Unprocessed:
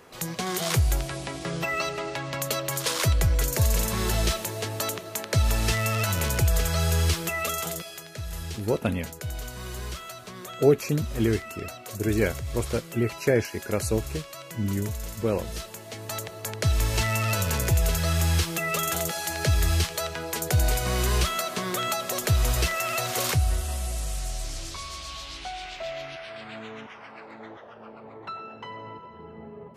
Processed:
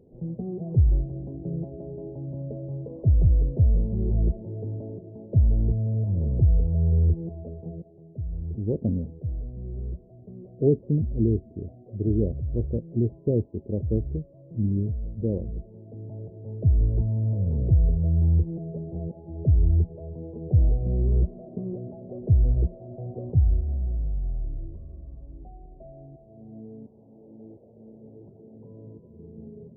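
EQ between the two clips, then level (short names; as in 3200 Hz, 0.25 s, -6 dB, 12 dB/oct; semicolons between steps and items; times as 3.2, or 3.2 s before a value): Gaussian blur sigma 21 samples; +4.0 dB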